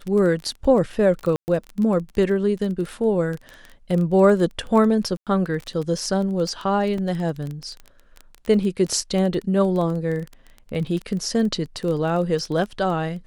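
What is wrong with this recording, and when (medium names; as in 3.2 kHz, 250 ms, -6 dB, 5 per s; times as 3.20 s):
crackle 17 per s -26 dBFS
1.36–1.48 s: dropout 119 ms
5.17–5.27 s: dropout 97 ms
6.98 s: dropout 3.2 ms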